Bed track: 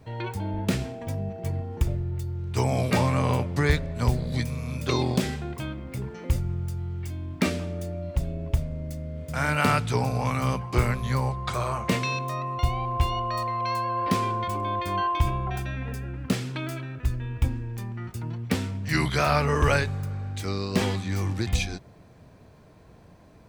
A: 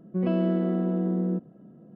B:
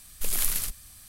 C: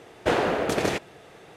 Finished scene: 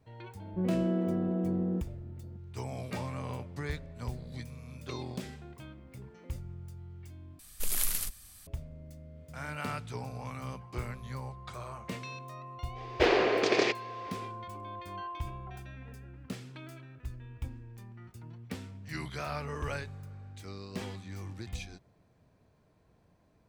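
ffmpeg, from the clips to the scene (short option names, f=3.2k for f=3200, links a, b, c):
-filter_complex "[0:a]volume=-14.5dB[a];[3:a]highpass=360,equalizer=f=380:t=q:w=4:g=6,equalizer=f=600:t=q:w=4:g=-4,equalizer=f=870:t=q:w=4:g=-5,equalizer=f=1.4k:t=q:w=4:g=-6,equalizer=f=2.3k:t=q:w=4:g=4,equalizer=f=4.8k:t=q:w=4:g=5,lowpass=f=5.9k:w=0.5412,lowpass=f=5.9k:w=1.3066[b];[a]asplit=2[c][d];[c]atrim=end=7.394[e];[2:a]atrim=end=1.08,asetpts=PTS-STARTPTS,volume=-4dB[f];[d]atrim=start=8.466[g];[1:a]atrim=end=1.95,asetpts=PTS-STARTPTS,volume=-5dB,afade=t=in:d=0.004:c=hsin,afade=t=out:st=1.946:d=0.004:c=hsin,adelay=420[h];[b]atrim=end=1.56,asetpts=PTS-STARTPTS,volume=-0.5dB,afade=t=in:d=0.05,afade=t=out:st=1.51:d=0.05,adelay=12740[i];[e][f]acrossfade=d=0.004:c1=hsin:c2=hsin[j];[j][g]acrossfade=d=0.004:c1=hsin:c2=hsin[k];[k][h][i]amix=inputs=3:normalize=0"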